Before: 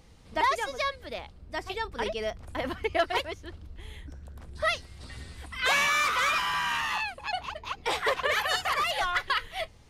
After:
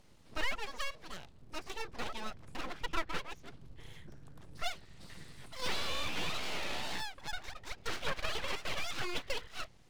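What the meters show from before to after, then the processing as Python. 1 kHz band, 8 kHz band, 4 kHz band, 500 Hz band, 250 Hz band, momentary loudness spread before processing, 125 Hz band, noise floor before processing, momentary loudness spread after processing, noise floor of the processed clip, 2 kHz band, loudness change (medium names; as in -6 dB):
-14.0 dB, -8.0 dB, -7.5 dB, -12.0 dB, -5.0 dB, 20 LU, -5.5 dB, -52 dBFS, 17 LU, -58 dBFS, -12.5 dB, -11.0 dB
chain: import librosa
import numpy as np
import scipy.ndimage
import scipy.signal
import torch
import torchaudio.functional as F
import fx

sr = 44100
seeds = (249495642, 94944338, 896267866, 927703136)

y = fx.dmg_crackle(x, sr, seeds[0], per_s=180.0, level_db=-56.0)
y = fx.env_lowpass_down(y, sr, base_hz=2100.0, full_db=-22.5)
y = np.abs(y)
y = fx.record_warp(y, sr, rpm=33.33, depth_cents=160.0)
y = F.gain(torch.from_numpy(y), -5.5).numpy()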